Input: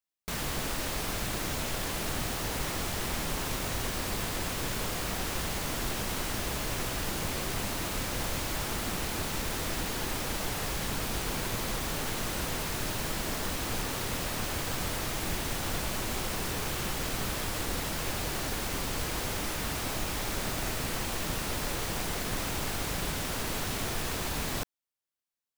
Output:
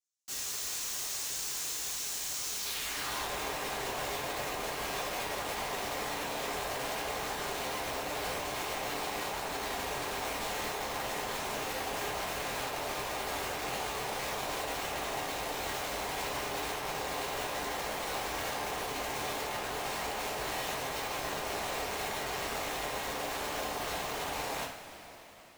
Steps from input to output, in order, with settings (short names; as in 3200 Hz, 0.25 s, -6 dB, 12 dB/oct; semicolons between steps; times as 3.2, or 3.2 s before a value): band-pass sweep 6600 Hz -> 710 Hz, 2.52–3.27; wrapped overs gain 38.5 dB; two-slope reverb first 0.38 s, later 4.4 s, from -18 dB, DRR -8 dB